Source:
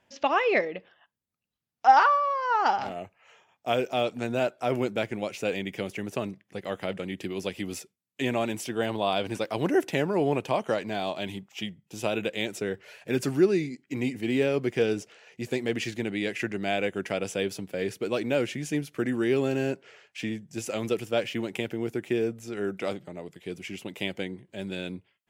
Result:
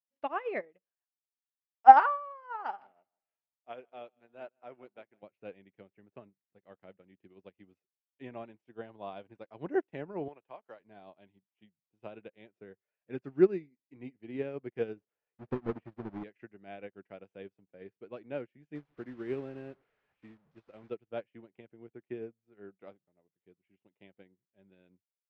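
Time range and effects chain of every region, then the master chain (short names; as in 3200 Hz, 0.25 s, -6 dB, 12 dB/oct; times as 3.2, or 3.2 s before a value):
2.43–5.23 HPF 480 Hz 6 dB/oct + feedback echo 0.158 s, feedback 37%, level -14.5 dB
10.28–10.8 bell 130 Hz -13.5 dB 3 oct + three-band squash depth 40%
15–16.24 half-waves squared off + de-esser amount 85%
18.75–20.9 delta modulation 64 kbps, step -31.5 dBFS + careless resampling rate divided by 4×, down none, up hold
whole clip: LPF 1900 Hz 12 dB/oct; upward expander 2.5:1, over -43 dBFS; gain +5 dB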